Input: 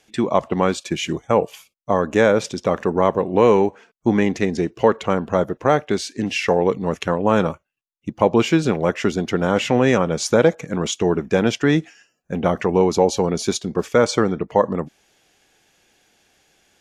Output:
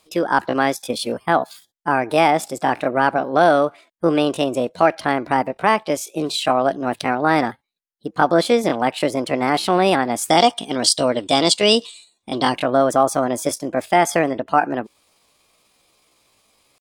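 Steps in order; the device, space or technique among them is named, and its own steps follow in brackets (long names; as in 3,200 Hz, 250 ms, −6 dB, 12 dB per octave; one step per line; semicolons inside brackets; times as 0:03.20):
gain on a spectral selection 0:10.33–0:12.57, 1,900–6,300 Hz +12 dB
chipmunk voice (pitch shifter +6.5 semitones)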